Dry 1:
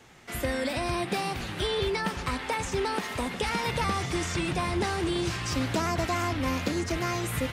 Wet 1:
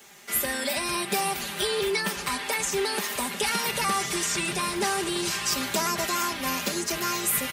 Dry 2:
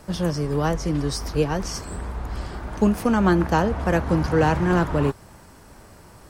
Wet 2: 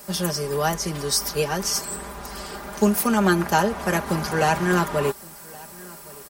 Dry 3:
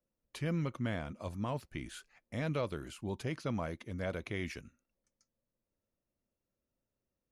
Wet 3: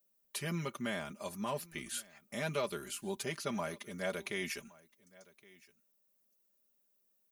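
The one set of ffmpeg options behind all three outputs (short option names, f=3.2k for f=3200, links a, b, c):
-filter_complex "[0:a]aemphasis=mode=production:type=bsi,aecho=1:1:5:0.75,asplit=2[a][b];[b]aecho=0:1:1118:0.0708[c];[a][c]amix=inputs=2:normalize=0"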